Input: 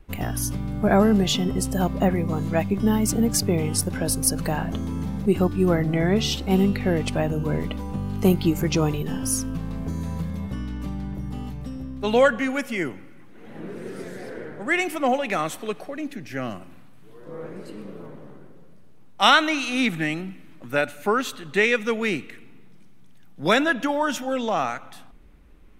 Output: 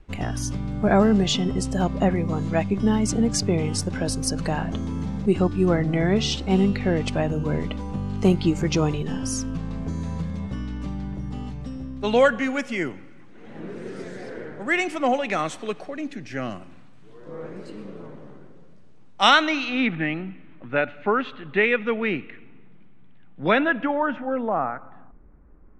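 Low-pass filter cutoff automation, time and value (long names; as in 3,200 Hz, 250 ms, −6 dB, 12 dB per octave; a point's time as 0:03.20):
low-pass filter 24 dB per octave
0:19.29 7,900 Hz
0:19.88 3,000 Hz
0:23.64 3,000 Hz
0:24.58 1,500 Hz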